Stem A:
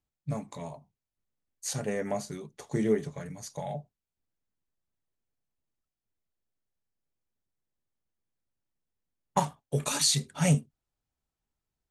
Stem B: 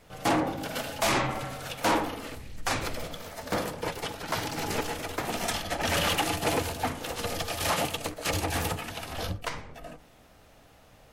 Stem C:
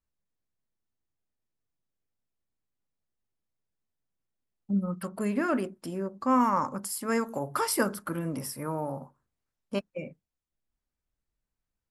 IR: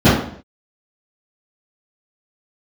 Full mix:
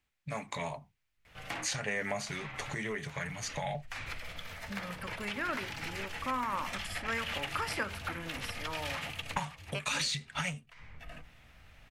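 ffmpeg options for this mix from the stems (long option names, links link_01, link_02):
-filter_complex "[0:a]asoftclip=type=tanh:threshold=-17dB,volume=2dB,asplit=2[link_01][link_02];[1:a]acompressor=threshold=-33dB:ratio=6,adelay=1250,volume=-10dB[link_03];[2:a]volume=-10dB[link_04];[link_02]apad=whole_len=545955[link_05];[link_03][link_05]sidechaincompress=threshold=-37dB:ratio=16:attack=5.7:release=458[link_06];[link_01][link_06]amix=inputs=2:normalize=0,asubboost=boost=4.5:cutoff=160,acompressor=threshold=-29dB:ratio=4,volume=0dB[link_07];[link_04][link_07]amix=inputs=2:normalize=0,equalizer=frequency=2200:width_type=o:width=1.7:gain=14,acrossover=split=490|7700[link_08][link_09][link_10];[link_08]acompressor=threshold=-41dB:ratio=4[link_11];[link_09]acompressor=threshold=-31dB:ratio=4[link_12];[link_10]acompressor=threshold=-55dB:ratio=4[link_13];[link_11][link_12][link_13]amix=inputs=3:normalize=0"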